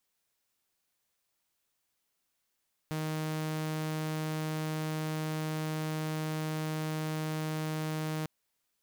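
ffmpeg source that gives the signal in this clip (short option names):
-f lavfi -i "aevalsrc='0.0335*(2*mod(156*t,1)-1)':d=5.35:s=44100"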